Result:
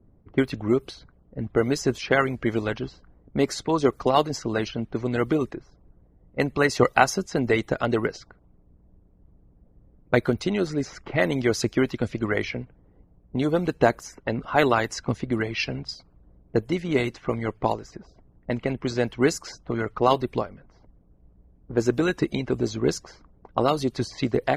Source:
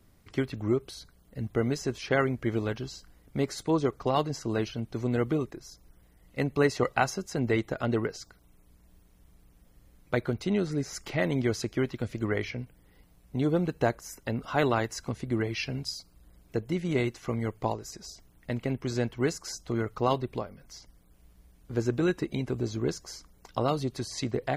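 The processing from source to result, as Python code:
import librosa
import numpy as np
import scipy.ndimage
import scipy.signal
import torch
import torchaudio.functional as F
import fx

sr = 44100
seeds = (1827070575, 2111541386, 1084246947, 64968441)

y = fx.hpss(x, sr, part='harmonic', gain_db=-8)
y = fx.env_lowpass(y, sr, base_hz=560.0, full_db=-27.5)
y = y * 10.0 ** (8.0 / 20.0)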